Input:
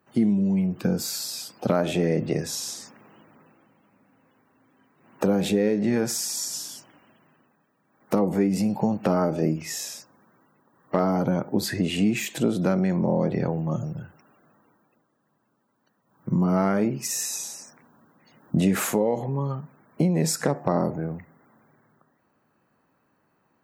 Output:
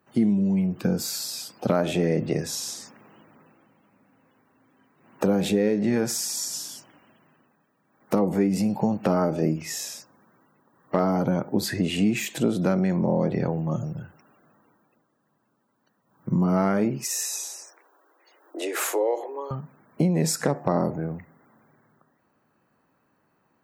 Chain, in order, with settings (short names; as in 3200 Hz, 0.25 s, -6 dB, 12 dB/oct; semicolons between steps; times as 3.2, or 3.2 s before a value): 17.04–19.51 steep high-pass 320 Hz 72 dB/oct